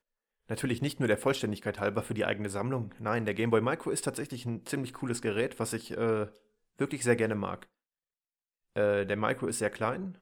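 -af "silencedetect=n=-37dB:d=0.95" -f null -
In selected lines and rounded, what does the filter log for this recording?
silence_start: 7.63
silence_end: 8.76 | silence_duration: 1.14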